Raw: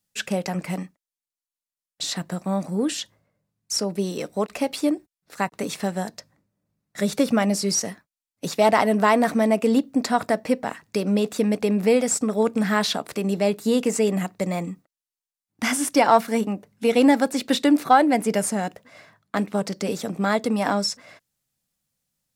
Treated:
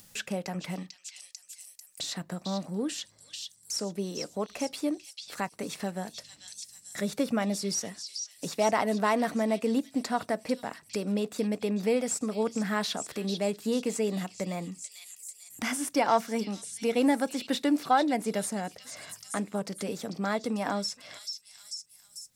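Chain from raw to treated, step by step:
echo through a band-pass that steps 444 ms, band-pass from 4,400 Hz, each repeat 0.7 octaves, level −4.5 dB
upward compression, threshold −24 dBFS
level −8 dB

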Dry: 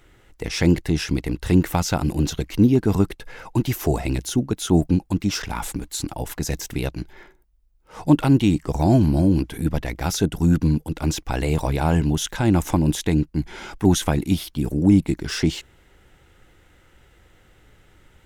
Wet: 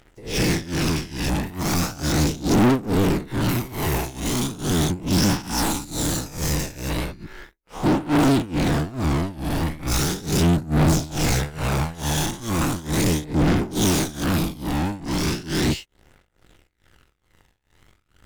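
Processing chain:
every bin's largest magnitude spread in time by 480 ms
hard clipping −3.5 dBFS, distortion −24 dB
leveller curve on the samples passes 3
amplitude tremolo 2.3 Hz, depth 93%
soft clipping −17 dBFS, distortion −8 dB
phase shifter 0.37 Hz, delay 1.2 ms, feedback 31%
expander for the loud parts 2.5 to 1, over −20 dBFS

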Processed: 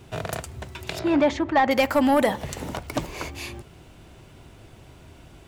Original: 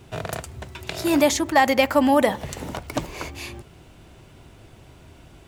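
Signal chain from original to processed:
0:00.99–0:01.71: low-pass filter 2,400 Hz 12 dB per octave
soft clipping −11 dBFS, distortion −16 dB

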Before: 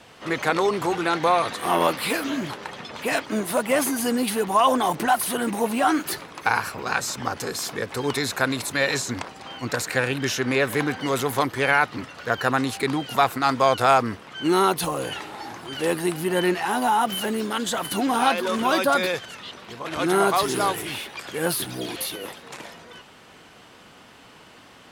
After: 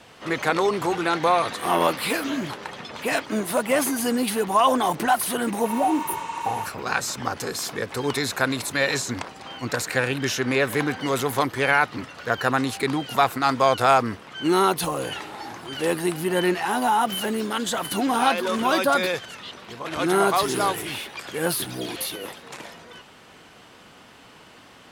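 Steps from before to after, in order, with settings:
healed spectral selection 0:05.71–0:06.63, 860–9,000 Hz before

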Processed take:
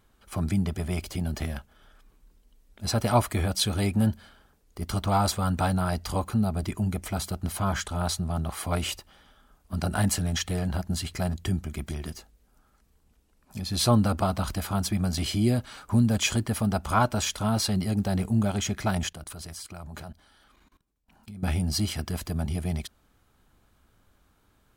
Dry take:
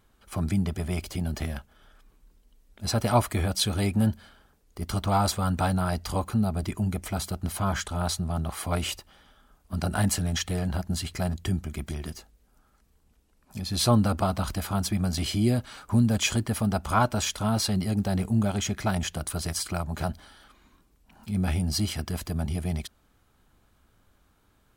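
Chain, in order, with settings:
0:19.09–0:21.43: output level in coarse steps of 20 dB

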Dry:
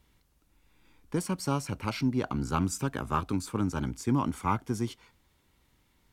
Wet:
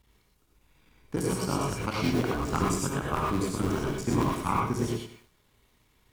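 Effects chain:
sub-harmonics by changed cycles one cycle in 3, muted
reverb whose tail is shaped and stops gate 140 ms rising, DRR −2.5 dB
feedback echo at a low word length 97 ms, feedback 35%, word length 9 bits, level −11 dB

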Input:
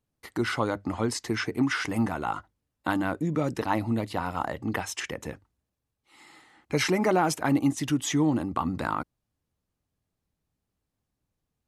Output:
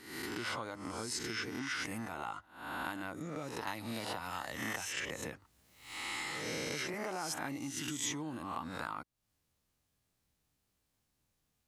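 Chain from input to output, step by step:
peak hold with a rise ahead of every peak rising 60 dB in 0.68 s
downward compressor 4 to 1, threshold −39 dBFS, peak gain reduction 18.5 dB
tilt shelving filter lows −4.5 dB, about 1,200 Hz
0:03.67–0:06.94: multiband upward and downward compressor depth 100%
level +1 dB

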